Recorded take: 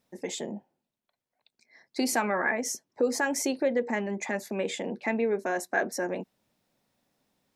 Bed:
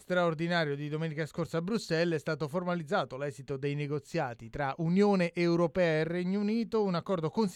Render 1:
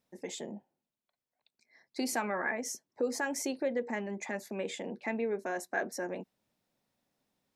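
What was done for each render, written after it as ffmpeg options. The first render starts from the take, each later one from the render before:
-af "volume=-6dB"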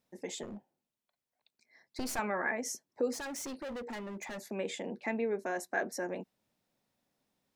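-filter_complex "[0:a]asettb=1/sr,asplit=3[a][b][c];[a]atrim=end=0.434[d];[b]atrim=start=0.43:end=2.19,asetpts=PTS-STARTPTS,afade=t=in:d=0.004:c=qsin,afade=t=out:st=1.756:d=0.004:c=qsin,aeval=exprs='clip(val(0),-1,0.00794)':c=same[e];[c]atrim=start=2.186[f];[d][e]acrossfade=d=0.004:c1=hsin:c2=qsin[g];[g][f]acrossfade=d=0.004:c1=qsin:c2=hsin,asettb=1/sr,asplit=3[h][i][j];[h]atrim=end=3.134[k];[i]atrim=start=3.13:end=4.38,asetpts=PTS-STARTPTS,afade=t=in:d=0.004:c=qsin,afade=t=out:st=1.246:d=0.004:c=qsin,asoftclip=type=hard:threshold=-38.5dB[l];[j]atrim=start=4.376[m];[k][l]acrossfade=d=0.004:c1=hsin:c2=qsin[n];[n][m]acrossfade=d=0.004:c1=qsin:c2=hsin"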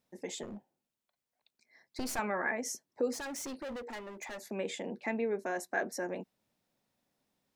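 -filter_complex "[0:a]asettb=1/sr,asplit=3[a][b][c];[a]atrim=end=3.764[d];[b]atrim=start=3.76:end=4.43,asetpts=PTS-STARTPTS,afade=t=in:d=0.004:c=qsin,afade=t=out:st=0.666:d=0.004:c=qsin,equalizer=f=160:w=1.5:g=-12.5[e];[c]atrim=start=4.426[f];[d][e]acrossfade=d=0.004:c1=hsin:c2=qsin[g];[g][f]acrossfade=d=0.004:c1=qsin:c2=hsin"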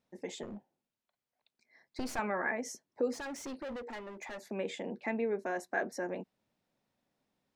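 -af "highshelf=f=6.4k:g=-11"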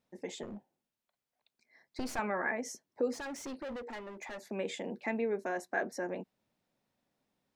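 -filter_complex "[0:a]asettb=1/sr,asplit=3[a][b][c];[a]atrim=end=4.534[d];[b]atrim=start=4.53:end=5.49,asetpts=PTS-STARTPTS,afade=t=in:d=0.004:c=qsin,afade=t=out:st=0.956:d=0.004:c=qsin,highshelf=f=4.9k:g=5.5[e];[c]atrim=start=5.486[f];[d][e]acrossfade=d=0.004:c1=hsin:c2=qsin[g];[g][f]acrossfade=d=0.004:c1=qsin:c2=hsin"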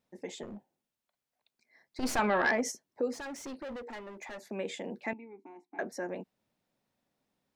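-filter_complex "[0:a]asplit=3[a][b][c];[a]afade=t=out:st=2.02:d=0.02[d];[b]aeval=exprs='0.0944*sin(PI/2*1.58*val(0)/0.0944)':c=same,afade=t=in:st=2.02:d=0.02,afade=t=out:st=2.7:d=0.02[e];[c]afade=t=in:st=2.7:d=0.02[f];[d][e][f]amix=inputs=3:normalize=0,asettb=1/sr,asplit=3[g][h][i];[g]atrim=end=5.134[j];[h]atrim=start=5.13:end=5.79,asetpts=PTS-STARTPTS,afade=t=in:d=0.004:c=qsin,afade=t=out:st=0.656:d=0.004:c=qsin,asplit=3[k][l][m];[k]bandpass=f=300:t=q:w=8,volume=0dB[n];[l]bandpass=f=870:t=q:w=8,volume=-6dB[o];[m]bandpass=f=2.24k:t=q:w=8,volume=-9dB[p];[n][o][p]amix=inputs=3:normalize=0[q];[i]atrim=start=5.786[r];[j][q]acrossfade=d=0.004:c1=hsin:c2=qsin[s];[s][r]acrossfade=d=0.004:c1=qsin:c2=hsin"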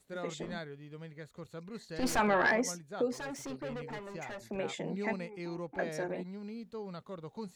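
-filter_complex "[1:a]volume=-13dB[a];[0:a][a]amix=inputs=2:normalize=0"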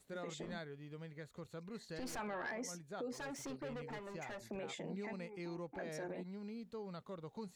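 -af "alimiter=level_in=5.5dB:limit=-24dB:level=0:latency=1:release=52,volume=-5.5dB,acompressor=threshold=-51dB:ratio=1.5"

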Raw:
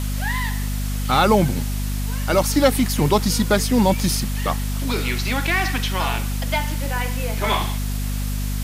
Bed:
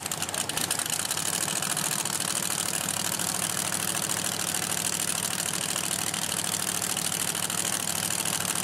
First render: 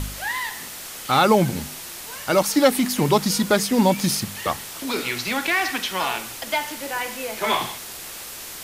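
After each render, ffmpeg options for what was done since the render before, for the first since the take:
-af "bandreject=f=50:t=h:w=4,bandreject=f=100:t=h:w=4,bandreject=f=150:t=h:w=4,bandreject=f=200:t=h:w=4,bandreject=f=250:t=h:w=4"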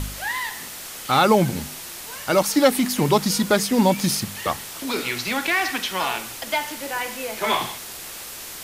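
-af anull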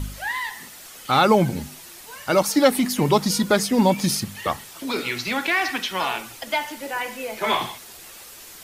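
-af "afftdn=nr=8:nf=-36"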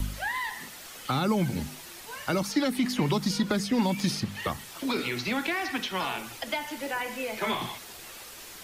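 -filter_complex "[0:a]acrossover=split=400|4900[a][b][c];[b]alimiter=limit=-13.5dB:level=0:latency=1:release=242[d];[a][d][c]amix=inputs=3:normalize=0,acrossover=split=320|1100|5100[e][f][g][h];[e]acompressor=threshold=-25dB:ratio=4[i];[f]acompressor=threshold=-35dB:ratio=4[j];[g]acompressor=threshold=-32dB:ratio=4[k];[h]acompressor=threshold=-46dB:ratio=4[l];[i][j][k][l]amix=inputs=4:normalize=0"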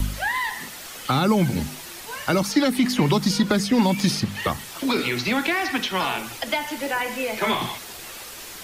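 -af "volume=6.5dB"

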